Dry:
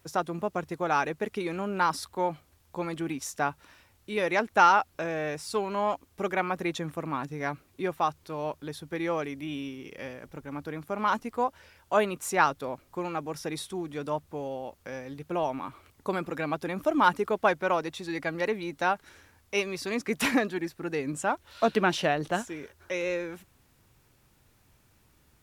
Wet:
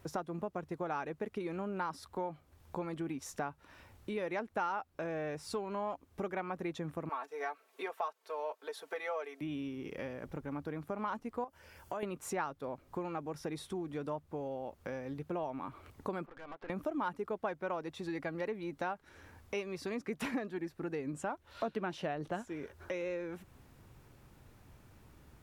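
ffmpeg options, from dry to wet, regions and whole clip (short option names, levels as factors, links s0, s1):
-filter_complex "[0:a]asettb=1/sr,asplit=3[s0][s1][s2];[s0]atrim=end=7.094[s3];[s1]atrim=start=7.09:end=9.41,asetpts=PTS-STARTPTS,afade=t=in:d=0.004:c=qsin,afade=t=out:st=2.316:d=0.004:c=qsin,highpass=f=480:w=0.5412,highpass=f=480:w=1.3066,aecho=1:1:4.5:0.87,atrim=end_sample=102312[s4];[s2]atrim=start=9.406[s5];[s3][s4]acrossfade=d=0.004:c1=hsin:c2=qsin[s6];[s6][s5]acrossfade=d=0.004:c1=qsin:c2=hsin,asettb=1/sr,asplit=3[s7][s8][s9];[s7]atrim=end=11.444[s10];[s8]atrim=start=11.44:end=12.03,asetpts=PTS-STARTPTS,afade=t=in:d=0.004:c=qsin,afade=t=out:st=0.586:d=0.004:c=qsin,aemphasis=mode=production:type=cd,bandreject=f=3800:w=7.8,acompressor=threshold=0.0158:ratio=3:attack=3.2:release=140:knee=1:detection=peak[s11];[s9]atrim=start=12.026[s12];[s10][s11]acrossfade=d=0.004:c1=hsin:c2=qsin[s13];[s13][s12]acrossfade=d=0.004:c1=qsin:c2=hsin,asettb=1/sr,asplit=3[s14][s15][s16];[s14]atrim=end=16.264[s17];[s15]atrim=start=16.26:end=16.7,asetpts=PTS-STARTPTS,afade=t=in:d=0.004:c=qsin,afade=t=out:st=0.436:d=0.004:c=qsin,highpass=670,lowpass=2100,acompressor=threshold=0.01:ratio=5:attack=3.2:release=140:knee=1:detection=peak,aeval=exprs='(tanh(158*val(0)+0.7)-tanh(0.7))/158':c=same[s18];[s16]atrim=start=16.696[s19];[s17][s18]acrossfade=d=0.004:c1=hsin:c2=qsin[s20];[s20][s19]acrossfade=d=0.004:c1=qsin:c2=hsin,highshelf=f=2100:g=-10,acompressor=threshold=0.00501:ratio=3,volume=2"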